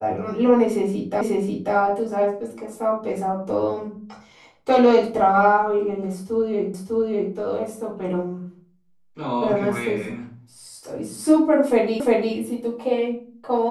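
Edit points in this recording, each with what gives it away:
1.21 s: repeat of the last 0.54 s
6.74 s: repeat of the last 0.6 s
12.00 s: repeat of the last 0.35 s

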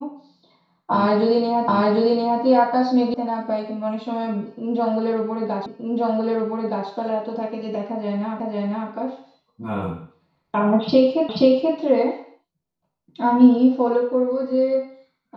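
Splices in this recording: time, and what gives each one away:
1.68 s: repeat of the last 0.75 s
3.14 s: sound stops dead
5.66 s: repeat of the last 1.22 s
8.40 s: repeat of the last 0.5 s
11.29 s: repeat of the last 0.48 s

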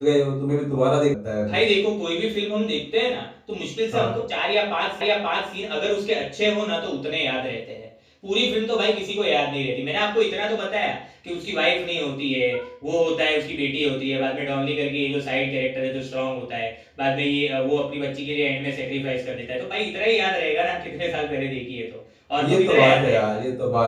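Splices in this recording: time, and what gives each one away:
1.14 s: sound stops dead
5.01 s: repeat of the last 0.53 s

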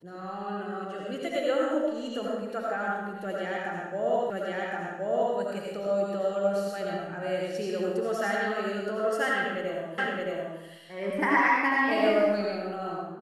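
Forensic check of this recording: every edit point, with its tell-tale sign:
4.30 s: repeat of the last 1.07 s
9.98 s: repeat of the last 0.62 s

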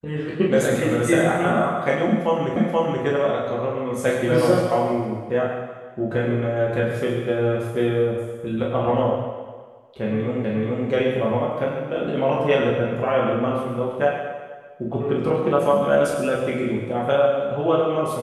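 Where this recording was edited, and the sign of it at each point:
2.56 s: repeat of the last 0.48 s
10.44 s: repeat of the last 0.43 s

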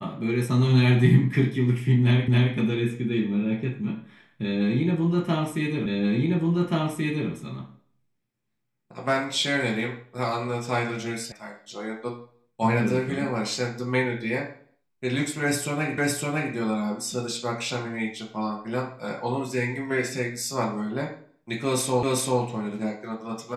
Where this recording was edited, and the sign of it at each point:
2.28 s: repeat of the last 0.27 s
5.86 s: repeat of the last 1.43 s
11.32 s: sound stops dead
15.98 s: repeat of the last 0.56 s
22.03 s: repeat of the last 0.39 s

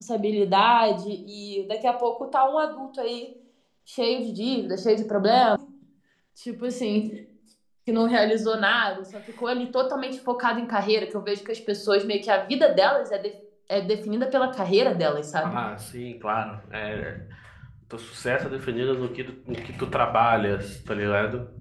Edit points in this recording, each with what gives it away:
5.56 s: sound stops dead

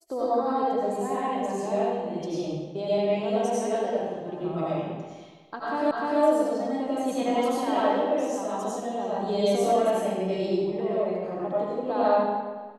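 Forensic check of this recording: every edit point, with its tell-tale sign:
5.91 s: repeat of the last 0.3 s

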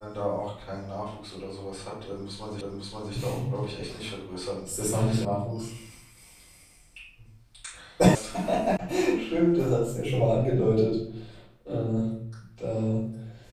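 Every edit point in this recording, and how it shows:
2.61 s: repeat of the last 0.53 s
5.25 s: sound stops dead
8.15 s: sound stops dead
8.77 s: sound stops dead

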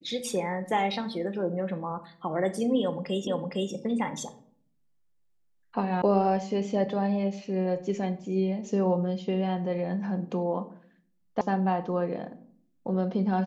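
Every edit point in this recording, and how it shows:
3.27 s: repeat of the last 0.46 s
6.02 s: sound stops dead
11.41 s: sound stops dead

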